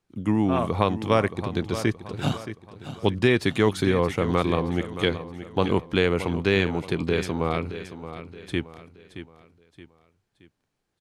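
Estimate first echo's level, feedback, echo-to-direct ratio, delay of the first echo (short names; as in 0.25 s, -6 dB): -12.0 dB, 40%, -11.5 dB, 0.623 s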